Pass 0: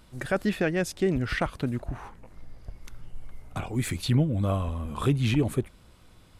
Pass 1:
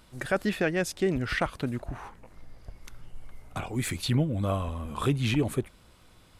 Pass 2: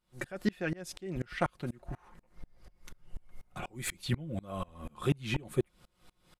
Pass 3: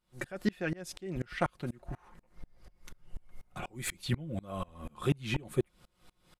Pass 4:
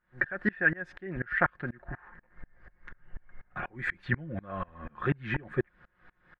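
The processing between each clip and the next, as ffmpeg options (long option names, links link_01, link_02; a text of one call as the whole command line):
ffmpeg -i in.wav -af "lowshelf=frequency=340:gain=-4.5,volume=1dB" out.wav
ffmpeg -i in.wav -af "aecho=1:1:5.6:0.5,aeval=exprs='val(0)*pow(10,-29*if(lt(mod(-4.1*n/s,1),2*abs(-4.1)/1000),1-mod(-4.1*n/s,1)/(2*abs(-4.1)/1000),(mod(-4.1*n/s,1)-2*abs(-4.1)/1000)/(1-2*abs(-4.1)/1000))/20)':channel_layout=same" out.wav
ffmpeg -i in.wav -af anull out.wav
ffmpeg -i in.wav -af "lowpass=frequency=1700:width_type=q:width=9.1" out.wav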